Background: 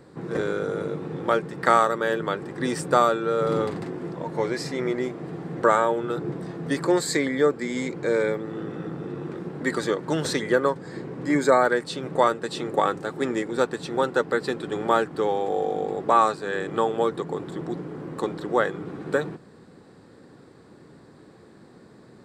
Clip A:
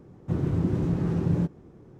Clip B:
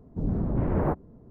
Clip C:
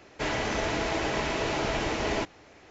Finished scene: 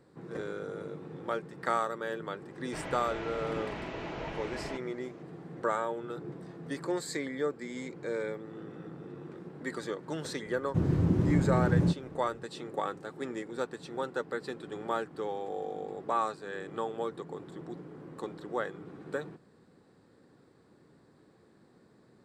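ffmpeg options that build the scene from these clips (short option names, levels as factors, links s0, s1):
-filter_complex "[0:a]volume=0.266[s0];[3:a]acrossover=split=3700[s1][s2];[s2]acompressor=threshold=0.00141:ratio=4:attack=1:release=60[s3];[s1][s3]amix=inputs=2:normalize=0,atrim=end=2.7,asetpts=PTS-STARTPTS,volume=0.282,afade=t=in:d=0.004:c=hsin,afade=t=out:st=2.696:d=0.004:c=hsin,adelay=2530[s4];[1:a]atrim=end=1.99,asetpts=PTS-STARTPTS,volume=0.891,afade=t=in:d=0.004:c=hsin,afade=t=out:st=1.986:d=0.004:c=hsin,adelay=10460[s5];[s0][s4][s5]amix=inputs=3:normalize=0"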